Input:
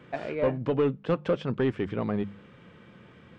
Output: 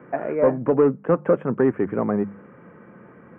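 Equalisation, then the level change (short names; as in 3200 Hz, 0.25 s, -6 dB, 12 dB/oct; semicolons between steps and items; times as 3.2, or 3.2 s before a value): Butterworth band-stop 4400 Hz, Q 0.58; three-band isolator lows -13 dB, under 160 Hz, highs -17 dB, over 2400 Hz; +8.0 dB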